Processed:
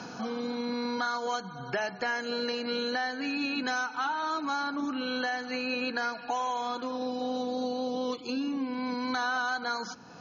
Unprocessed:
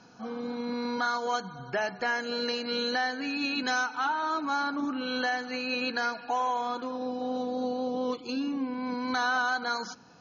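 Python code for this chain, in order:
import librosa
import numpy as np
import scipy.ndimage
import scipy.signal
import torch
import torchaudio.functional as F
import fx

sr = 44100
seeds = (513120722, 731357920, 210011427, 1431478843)

y = fx.band_squash(x, sr, depth_pct=70)
y = F.gain(torch.from_numpy(y), -2.0).numpy()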